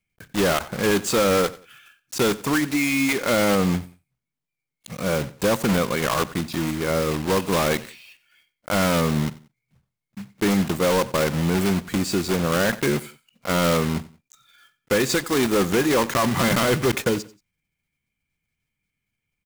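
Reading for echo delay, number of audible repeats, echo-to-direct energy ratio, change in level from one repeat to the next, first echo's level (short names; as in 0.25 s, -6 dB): 91 ms, 2, -18.5 dB, -10.5 dB, -19.0 dB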